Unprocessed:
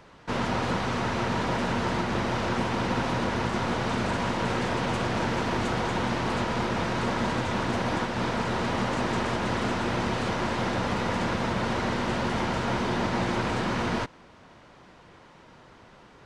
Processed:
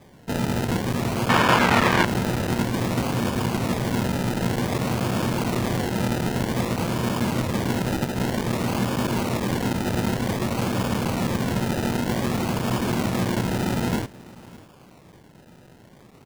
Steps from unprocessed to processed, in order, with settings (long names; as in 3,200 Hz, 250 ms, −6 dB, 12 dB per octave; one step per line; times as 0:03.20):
band-pass filter 110–2,100 Hz
low-shelf EQ 240 Hz +11 dB
sample-and-hold swept by an LFO 31×, swing 60% 0.53 Hz
0:01.29–0:02.05: parametric band 1,600 Hz +14.5 dB 2.9 octaves
single-tap delay 601 ms −21 dB
regular buffer underruns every 0.11 s, samples 256, zero, from 0:00.71